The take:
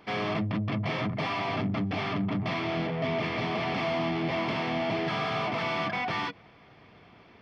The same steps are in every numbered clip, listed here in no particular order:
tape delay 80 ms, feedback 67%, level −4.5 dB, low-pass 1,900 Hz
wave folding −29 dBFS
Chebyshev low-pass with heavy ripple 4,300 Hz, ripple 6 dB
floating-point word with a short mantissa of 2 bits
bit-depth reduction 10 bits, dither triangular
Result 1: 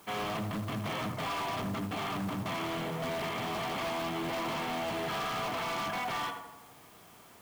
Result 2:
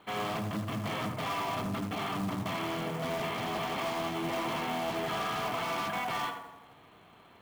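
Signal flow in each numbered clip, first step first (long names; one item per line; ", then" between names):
tape delay, then Chebyshev low-pass with heavy ripple, then bit-depth reduction, then floating-point word with a short mantissa, then wave folding
bit-depth reduction, then Chebyshev low-pass with heavy ripple, then wave folding, then tape delay, then floating-point word with a short mantissa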